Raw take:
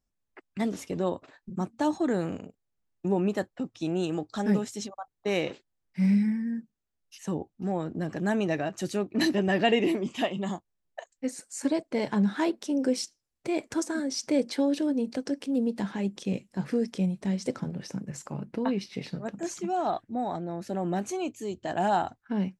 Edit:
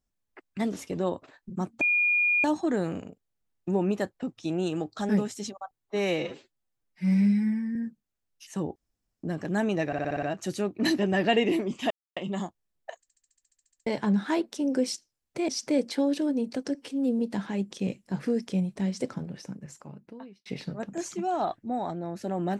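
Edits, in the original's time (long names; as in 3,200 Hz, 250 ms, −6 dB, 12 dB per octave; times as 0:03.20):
0:01.81: insert tone 2,430 Hz −20.5 dBFS 0.63 s
0:05.16–0:06.47: time-stretch 1.5×
0:07.47–0:07.95: fill with room tone
0:08.58: stutter 0.06 s, 7 plays
0:10.26: splice in silence 0.26 s
0:11.12: stutter in place 0.07 s, 12 plays
0:13.58–0:14.09: remove
0:15.35–0:15.65: time-stretch 1.5×
0:17.39–0:18.91: fade out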